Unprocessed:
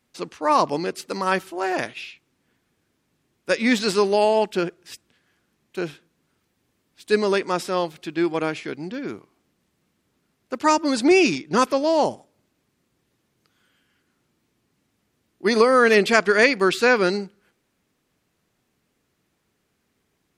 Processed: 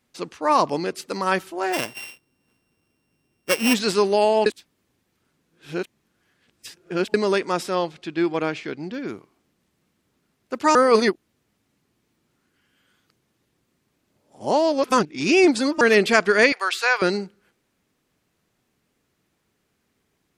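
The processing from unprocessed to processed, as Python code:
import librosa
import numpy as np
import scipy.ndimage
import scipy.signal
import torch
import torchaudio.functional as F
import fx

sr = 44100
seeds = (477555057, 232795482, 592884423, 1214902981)

y = fx.sample_sort(x, sr, block=16, at=(1.72, 3.73), fade=0.02)
y = fx.lowpass(y, sr, hz=6600.0, slope=12, at=(7.75, 8.93))
y = fx.highpass(y, sr, hz=670.0, slope=24, at=(16.52, 17.02))
y = fx.edit(y, sr, fx.reverse_span(start_s=4.46, length_s=2.68),
    fx.reverse_span(start_s=10.75, length_s=5.06), tone=tone)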